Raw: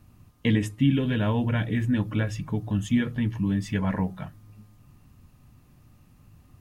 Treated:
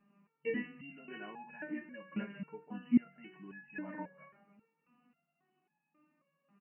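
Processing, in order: frequency-shifting echo 0.137 s, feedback 47%, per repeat -53 Hz, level -17.5 dB; FFT band-pass 140–3000 Hz; stepped resonator 3.7 Hz 200–840 Hz; gain +4 dB

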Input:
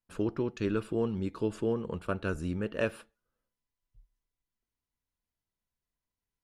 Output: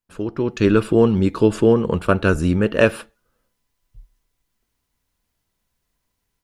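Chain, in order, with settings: AGC gain up to 13 dB; gain +3 dB

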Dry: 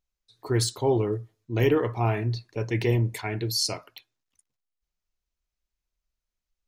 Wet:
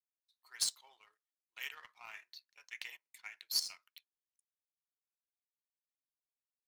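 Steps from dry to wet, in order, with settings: Bessel high-pass 2000 Hz, order 4; power-law curve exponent 1.4; 2.81–3.66 step gate ".xx.x.xxxx" 167 bpm -12 dB; gain -1 dB

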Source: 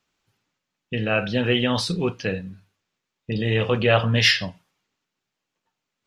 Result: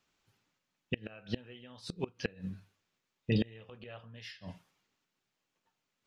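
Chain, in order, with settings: flipped gate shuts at -15 dBFS, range -28 dB; gain -2.5 dB

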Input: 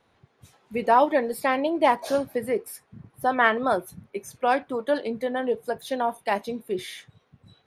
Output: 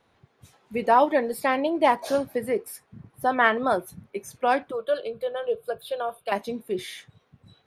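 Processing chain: 4.71–6.32 fixed phaser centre 1300 Hz, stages 8

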